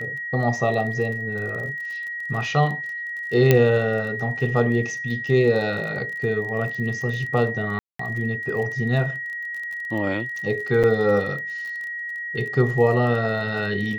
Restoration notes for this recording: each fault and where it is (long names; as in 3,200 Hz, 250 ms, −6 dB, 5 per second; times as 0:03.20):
surface crackle 27 per second −31 dBFS
whistle 1,900 Hz −28 dBFS
0:03.51: click −3 dBFS
0:07.79–0:07.99: drop-out 204 ms
0:10.83–0:10.84: drop-out 7.4 ms